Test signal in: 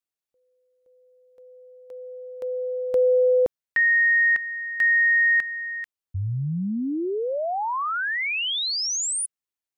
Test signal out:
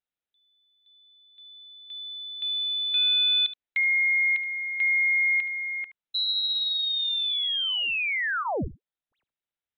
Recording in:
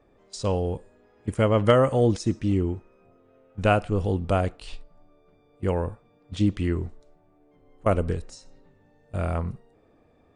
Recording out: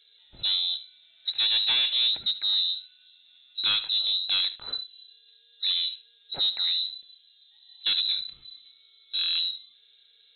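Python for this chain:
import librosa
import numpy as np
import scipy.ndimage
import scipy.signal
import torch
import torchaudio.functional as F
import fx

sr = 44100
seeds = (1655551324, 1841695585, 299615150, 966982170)

p1 = fx.notch(x, sr, hz=2900.0, q=19.0)
p2 = 10.0 ** (-20.5 / 20.0) * np.tanh(p1 / 10.0 ** (-20.5 / 20.0))
p3 = p2 + fx.echo_single(p2, sr, ms=73, db=-15.0, dry=0)
y = fx.freq_invert(p3, sr, carrier_hz=4000)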